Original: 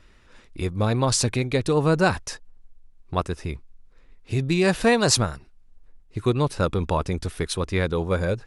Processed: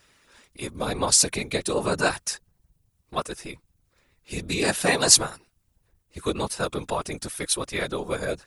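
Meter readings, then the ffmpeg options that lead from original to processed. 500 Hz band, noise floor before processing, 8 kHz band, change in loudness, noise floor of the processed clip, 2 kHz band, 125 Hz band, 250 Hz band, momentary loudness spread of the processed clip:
−4.0 dB, −54 dBFS, +7.0 dB, −0.5 dB, −71 dBFS, −0.5 dB, −11.5 dB, −6.5 dB, 19 LU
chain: -af "aemphasis=mode=production:type=bsi,afftfilt=real='hypot(re,im)*cos(2*PI*random(0))':imag='hypot(re,im)*sin(2*PI*random(1))':win_size=512:overlap=0.75,volume=4dB"

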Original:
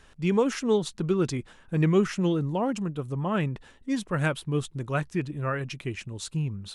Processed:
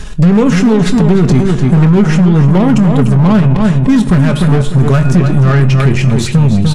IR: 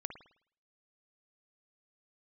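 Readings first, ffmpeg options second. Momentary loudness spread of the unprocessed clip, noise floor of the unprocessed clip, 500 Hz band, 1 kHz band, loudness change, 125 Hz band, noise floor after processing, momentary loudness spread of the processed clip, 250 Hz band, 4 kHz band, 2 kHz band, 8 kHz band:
10 LU, −56 dBFS, +12.5 dB, +14.0 dB, +18.5 dB, +22.0 dB, −16 dBFS, 2 LU, +19.5 dB, +14.0 dB, +13.5 dB, can't be measured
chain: -filter_complex "[0:a]aemphasis=mode=reproduction:type=50kf,bandreject=frequency=358.8:width_type=h:width=4,bandreject=frequency=717.6:width_type=h:width=4,bandreject=frequency=1076.4:width_type=h:width=4,bandreject=frequency=1435.2:width_type=h:width=4,bandreject=frequency=1794:width_type=h:width=4,bandreject=frequency=2152.8:width_type=h:width=4,bandreject=frequency=2511.6:width_type=h:width=4,bandreject=frequency=2870.4:width_type=h:width=4,bandreject=frequency=3229.2:width_type=h:width=4,bandreject=frequency=3588:width_type=h:width=4,bandreject=frequency=3946.8:width_type=h:width=4,bandreject=frequency=4305.6:width_type=h:width=4,bandreject=frequency=4664.4:width_type=h:width=4,bandreject=frequency=5023.2:width_type=h:width=4,bandreject=frequency=5382:width_type=h:width=4,bandreject=frequency=5740.8:width_type=h:width=4,bandreject=frequency=6099.6:width_type=h:width=4,bandreject=frequency=6458.4:width_type=h:width=4,bandreject=frequency=6817.2:width_type=h:width=4,bandreject=frequency=7176:width_type=h:width=4,bandreject=frequency=7534.8:width_type=h:width=4,bandreject=frequency=7893.6:width_type=h:width=4,bandreject=frequency=8252.4:width_type=h:width=4,bandreject=frequency=8611.2:width_type=h:width=4,bandreject=frequency=8970:width_type=h:width=4,bandreject=frequency=9328.8:width_type=h:width=4,bandreject=frequency=9687.6:width_type=h:width=4,bandreject=frequency=10046.4:width_type=h:width=4,bandreject=frequency=10405.2:width_type=h:width=4,bandreject=frequency=10764:width_type=h:width=4,bandreject=frequency=11122.8:width_type=h:width=4,bandreject=frequency=11481.6:width_type=h:width=4,bandreject=frequency=11840.4:width_type=h:width=4,acrossover=split=2700[link_01][link_02];[link_02]acompressor=threshold=-54dB:ratio=4:attack=1:release=60[link_03];[link_01][link_03]amix=inputs=2:normalize=0,bass=frequency=250:gain=12,treble=frequency=4000:gain=14,aecho=1:1:4.8:0.46,acompressor=threshold=-20dB:ratio=8,volume=19.5dB,asoftclip=hard,volume=-19.5dB,aeval=exprs='0.112*(cos(1*acos(clip(val(0)/0.112,-1,1)))-cos(1*PI/2))+0.00891*(cos(6*acos(clip(val(0)/0.112,-1,1)))-cos(6*PI/2))':channel_layout=same,asplit=2[link_04][link_05];[link_05]adelay=298,lowpass=frequency=4800:poles=1,volume=-7dB,asplit=2[link_06][link_07];[link_07]adelay=298,lowpass=frequency=4800:poles=1,volume=0.29,asplit=2[link_08][link_09];[link_09]adelay=298,lowpass=frequency=4800:poles=1,volume=0.29,asplit=2[link_10][link_11];[link_11]adelay=298,lowpass=frequency=4800:poles=1,volume=0.29[link_12];[link_04][link_06][link_08][link_10][link_12]amix=inputs=5:normalize=0,asplit=2[link_13][link_14];[1:a]atrim=start_sample=2205,adelay=23[link_15];[link_14][link_15]afir=irnorm=-1:irlink=0,volume=-9dB[link_16];[link_13][link_16]amix=inputs=2:normalize=0,aresample=32000,aresample=44100,alimiter=level_in=22dB:limit=-1dB:release=50:level=0:latency=1,volume=-1dB"

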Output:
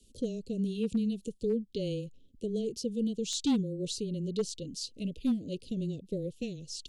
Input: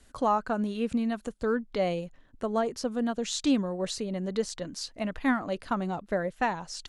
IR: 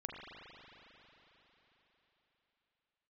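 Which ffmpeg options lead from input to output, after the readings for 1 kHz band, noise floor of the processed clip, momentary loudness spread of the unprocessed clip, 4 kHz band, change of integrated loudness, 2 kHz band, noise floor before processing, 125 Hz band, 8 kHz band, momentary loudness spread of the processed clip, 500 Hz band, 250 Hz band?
−23.5 dB, −60 dBFS, 7 LU, −2.0 dB, −4.0 dB, −19.0 dB, −58 dBFS, +1.5 dB, −1.5 dB, 7 LU, −5.0 dB, −2.0 dB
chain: -af "asuperstop=centerf=1200:order=12:qfactor=0.52,volume=21dB,asoftclip=hard,volume=-21dB,afreqshift=-15,volume=-1.5dB"

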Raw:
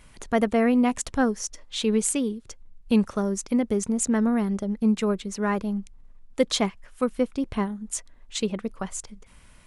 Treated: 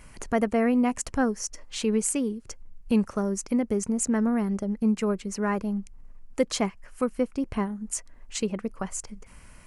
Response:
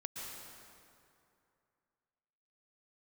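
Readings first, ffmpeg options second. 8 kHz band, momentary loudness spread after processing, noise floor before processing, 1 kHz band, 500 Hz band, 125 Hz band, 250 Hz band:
−1.0 dB, 10 LU, −52 dBFS, −2.0 dB, −2.0 dB, −1.5 dB, −2.0 dB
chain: -filter_complex "[0:a]equalizer=frequency=3600:width_type=o:width=0.31:gain=-12,asplit=2[link_01][link_02];[link_02]acompressor=threshold=-36dB:ratio=6,volume=1.5dB[link_03];[link_01][link_03]amix=inputs=2:normalize=0,volume=-3.5dB"

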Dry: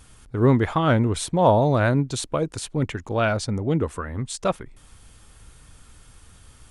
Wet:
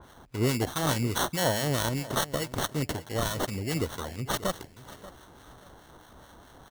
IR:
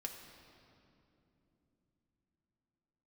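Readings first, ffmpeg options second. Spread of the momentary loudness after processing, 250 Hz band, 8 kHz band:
14 LU, −8.5 dB, +0.5 dB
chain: -filter_complex "[0:a]highpass=51,highshelf=frequency=1600:width_type=q:width=1.5:gain=10,acrusher=samples=18:mix=1:aa=0.000001,acrossover=split=1200[link_01][link_02];[link_01]aeval=exprs='val(0)*(1-0.5/2+0.5/2*cos(2*PI*4.7*n/s))':channel_layout=same[link_03];[link_02]aeval=exprs='val(0)*(1-0.5/2-0.5/2*cos(2*PI*4.7*n/s))':channel_layout=same[link_04];[link_03][link_04]amix=inputs=2:normalize=0,alimiter=limit=-11.5dB:level=0:latency=1:release=360,aecho=1:1:585|1170|1755:0.141|0.041|0.0119,adynamicequalizer=threshold=0.0141:dfrequency=3100:dqfactor=0.7:tfrequency=3100:tqfactor=0.7:attack=5:release=100:ratio=0.375:range=3:mode=boostabove:tftype=highshelf,volume=-4.5dB"

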